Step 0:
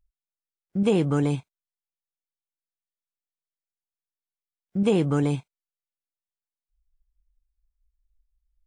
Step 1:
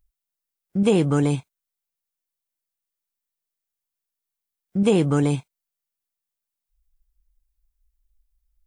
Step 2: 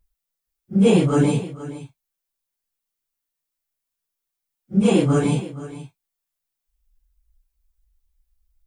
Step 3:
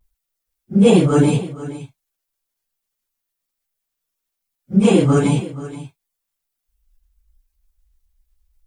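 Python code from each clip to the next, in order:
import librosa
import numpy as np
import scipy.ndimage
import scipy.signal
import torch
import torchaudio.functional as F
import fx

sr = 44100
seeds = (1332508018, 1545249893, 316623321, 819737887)

y1 = fx.high_shelf(x, sr, hz=8700.0, db=9.5)
y1 = y1 * librosa.db_to_amplitude(3.0)
y2 = fx.phase_scramble(y1, sr, seeds[0], window_ms=100)
y2 = y2 + 10.0 ** (-15.5 / 20.0) * np.pad(y2, (int(473 * sr / 1000.0), 0))[:len(y2)]
y2 = y2 * librosa.db_to_amplitude(3.0)
y3 = fx.spec_quant(y2, sr, step_db=15)
y3 = fx.vibrato(y3, sr, rate_hz=0.33, depth_cents=21.0)
y3 = y3 * librosa.db_to_amplitude(4.0)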